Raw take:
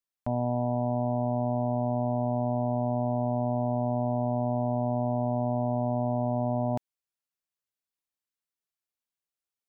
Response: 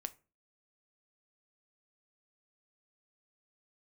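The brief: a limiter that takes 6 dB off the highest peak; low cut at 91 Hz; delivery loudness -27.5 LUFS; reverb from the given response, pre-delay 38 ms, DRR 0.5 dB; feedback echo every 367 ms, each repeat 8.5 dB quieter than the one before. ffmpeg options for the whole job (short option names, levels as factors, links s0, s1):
-filter_complex "[0:a]highpass=91,alimiter=limit=0.0631:level=0:latency=1,aecho=1:1:367|734|1101|1468:0.376|0.143|0.0543|0.0206,asplit=2[s0][s1];[1:a]atrim=start_sample=2205,adelay=38[s2];[s1][s2]afir=irnorm=-1:irlink=0,volume=1.26[s3];[s0][s3]amix=inputs=2:normalize=0,volume=1.68"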